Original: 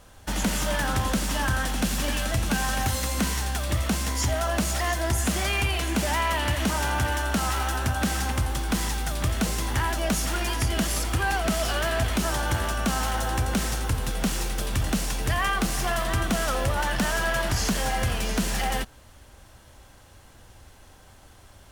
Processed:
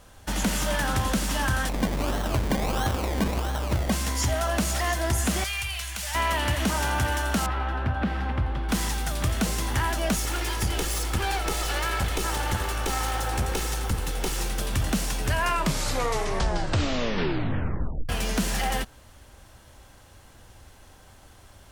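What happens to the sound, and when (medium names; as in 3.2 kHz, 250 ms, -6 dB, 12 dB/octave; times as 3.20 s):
1.69–3.92 s: decimation with a swept rate 26×, swing 60% 1.5 Hz
5.44–6.15 s: amplifier tone stack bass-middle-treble 10-0-10
7.46–8.69 s: distance through air 400 m
10.16–14.38 s: comb filter that takes the minimum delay 2.3 ms
15.15 s: tape stop 2.94 s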